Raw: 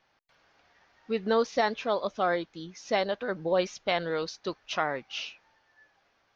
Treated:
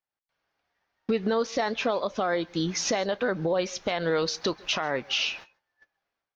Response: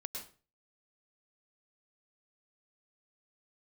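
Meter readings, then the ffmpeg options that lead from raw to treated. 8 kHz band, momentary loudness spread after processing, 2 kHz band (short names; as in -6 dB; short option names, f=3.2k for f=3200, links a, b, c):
n/a, 4 LU, +2.5 dB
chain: -filter_complex "[0:a]agate=range=-33dB:threshold=-55dB:ratio=16:detection=peak,acompressor=threshold=-41dB:ratio=5,alimiter=level_in=11.5dB:limit=-24dB:level=0:latency=1:release=59,volume=-11.5dB,dynaudnorm=f=100:g=5:m=11.5dB,asplit=2[a][b];[1:a]atrim=start_sample=2205,afade=t=out:st=0.18:d=0.01,atrim=end_sample=8379,adelay=31[c];[b][c]afir=irnorm=-1:irlink=0,volume=-19dB[d];[a][d]amix=inputs=2:normalize=0,volume=7dB"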